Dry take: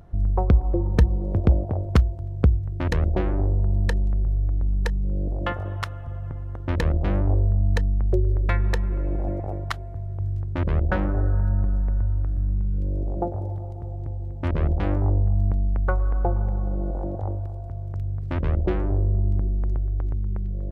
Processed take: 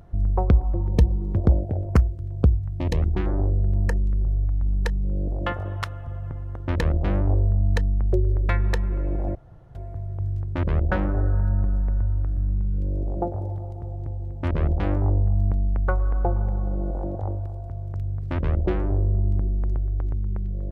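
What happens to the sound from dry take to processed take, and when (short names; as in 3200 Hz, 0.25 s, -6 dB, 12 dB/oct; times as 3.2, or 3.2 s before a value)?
0.64–4.66 stepped notch 4.2 Hz 430–3600 Hz
9.35–9.75 room tone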